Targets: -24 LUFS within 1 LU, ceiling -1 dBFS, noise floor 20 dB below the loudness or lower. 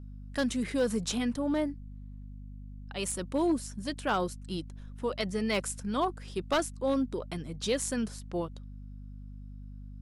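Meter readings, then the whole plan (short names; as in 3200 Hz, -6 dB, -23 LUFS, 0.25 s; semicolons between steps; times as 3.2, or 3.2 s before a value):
clipped 0.3%; flat tops at -21.0 dBFS; hum 50 Hz; harmonics up to 250 Hz; hum level -42 dBFS; loudness -32.0 LUFS; peak -21.0 dBFS; loudness target -24.0 LUFS
-> clip repair -21 dBFS; notches 50/100/150/200/250 Hz; gain +8 dB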